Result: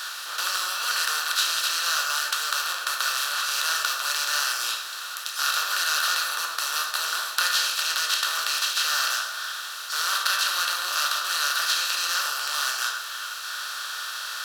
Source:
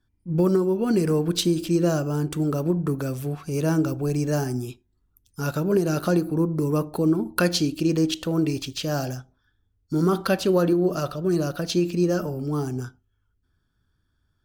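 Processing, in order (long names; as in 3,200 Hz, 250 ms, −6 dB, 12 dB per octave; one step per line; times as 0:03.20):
compressor on every frequency bin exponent 0.2
high-pass filter 1,200 Hz 24 dB per octave
convolution reverb RT60 0.55 s, pre-delay 8 ms, DRR 2.5 dB
level −4 dB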